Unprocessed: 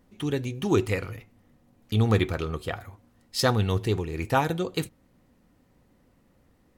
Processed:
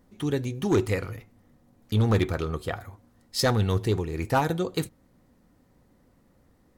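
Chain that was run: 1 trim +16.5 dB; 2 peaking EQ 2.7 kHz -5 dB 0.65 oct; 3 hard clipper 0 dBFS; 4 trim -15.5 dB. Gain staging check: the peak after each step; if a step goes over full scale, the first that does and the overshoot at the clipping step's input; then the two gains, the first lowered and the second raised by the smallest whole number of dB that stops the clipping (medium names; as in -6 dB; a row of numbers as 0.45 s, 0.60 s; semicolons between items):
+8.0 dBFS, +8.0 dBFS, 0.0 dBFS, -15.5 dBFS; step 1, 8.0 dB; step 1 +8.5 dB, step 4 -7.5 dB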